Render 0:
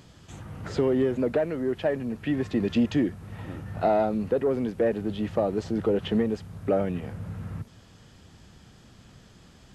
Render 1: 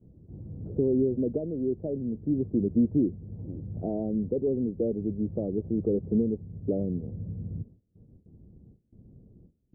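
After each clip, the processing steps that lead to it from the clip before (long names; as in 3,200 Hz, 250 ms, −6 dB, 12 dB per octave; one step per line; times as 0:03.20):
noise gate with hold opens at −42 dBFS
inverse Chebyshev low-pass filter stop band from 2,600 Hz, stop band 80 dB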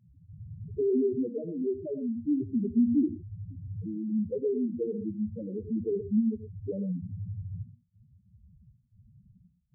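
spectral peaks only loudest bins 2
reverb whose tail is shaped and stops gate 140 ms rising, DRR 11 dB
level +1 dB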